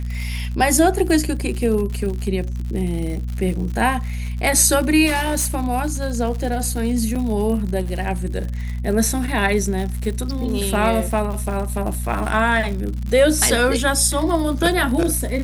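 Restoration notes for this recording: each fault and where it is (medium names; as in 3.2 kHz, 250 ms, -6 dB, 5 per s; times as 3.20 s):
crackle 96 per s -27 dBFS
hum 60 Hz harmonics 4 -25 dBFS
5.06–5.47 s: clipped -15.5 dBFS
7.15–7.16 s: dropout 6.1 ms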